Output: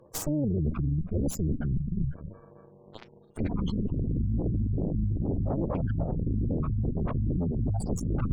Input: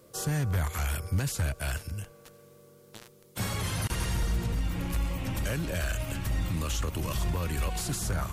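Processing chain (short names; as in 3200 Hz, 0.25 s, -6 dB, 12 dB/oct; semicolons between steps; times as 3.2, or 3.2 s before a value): non-linear reverb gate 0.38 s rising, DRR 9 dB; in parallel at -10 dB: hard clip -28 dBFS, distortion -12 dB; on the sum: spectral gate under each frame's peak -10 dB strong; added harmonics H 3 -14 dB, 6 -6 dB, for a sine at -18 dBFS; dynamic EQ 1900 Hz, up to -8 dB, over -54 dBFS, Q 1; reverse; compressor 6:1, threshold -34 dBFS, peak gain reduction 13.5 dB; reverse; gain +8.5 dB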